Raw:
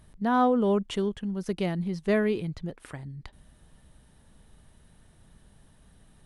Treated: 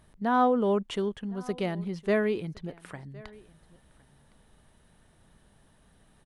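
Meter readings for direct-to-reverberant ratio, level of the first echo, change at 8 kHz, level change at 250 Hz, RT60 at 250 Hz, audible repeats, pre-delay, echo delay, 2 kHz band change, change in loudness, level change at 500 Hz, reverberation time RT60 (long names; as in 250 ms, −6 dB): no reverb audible, −23.0 dB, can't be measured, −3.0 dB, no reverb audible, 1, no reverb audible, 1,062 ms, 0.0 dB, −1.0 dB, −0.5 dB, no reverb audible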